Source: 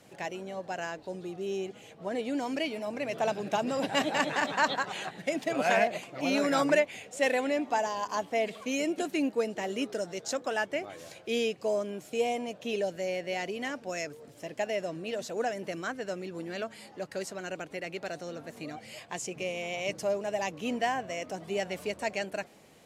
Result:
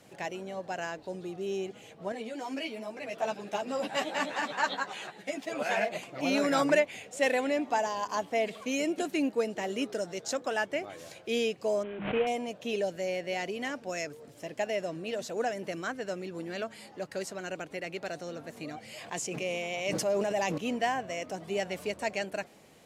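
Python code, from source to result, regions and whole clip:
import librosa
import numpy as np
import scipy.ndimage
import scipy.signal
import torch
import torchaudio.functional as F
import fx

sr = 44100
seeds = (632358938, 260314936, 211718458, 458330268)

y = fx.chain(x, sr, fx.highpass(hz=230.0, slope=6),
    fx.ensemble(), at=(2.12, 5.92))
y = fx.chain(y, sr, fx.cvsd(bps=16000),
    fx.hum_notches(base_hz=50, count=6),
    fx.pre_swell(db_per_s=67.0), at=(11.83, 12.27))
y = fx.chain(y, sr, fx.highpass(hz=120.0, slope=12),
    fx.sustainer(db_per_s=22.0), at=(18.94, 20.58))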